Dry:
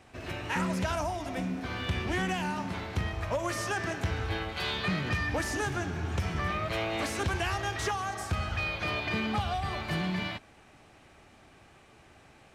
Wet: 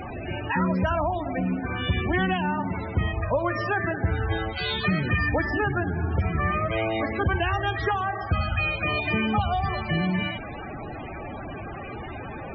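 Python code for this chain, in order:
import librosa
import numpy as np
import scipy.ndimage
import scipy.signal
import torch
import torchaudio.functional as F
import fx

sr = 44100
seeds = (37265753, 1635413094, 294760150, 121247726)

y = fx.delta_mod(x, sr, bps=32000, step_db=-33.5)
y = fx.spec_topn(y, sr, count=32)
y = F.gain(torch.from_numpy(y), 7.0).numpy()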